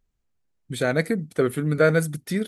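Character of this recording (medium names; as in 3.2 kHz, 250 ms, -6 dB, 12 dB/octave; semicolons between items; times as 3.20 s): noise floor -74 dBFS; spectral tilt -6.0 dB/octave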